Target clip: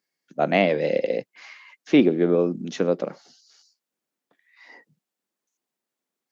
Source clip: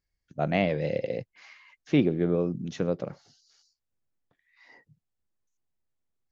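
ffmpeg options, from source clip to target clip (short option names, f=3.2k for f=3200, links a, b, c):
-af "highpass=f=210:w=0.5412,highpass=f=210:w=1.3066,volume=7dB"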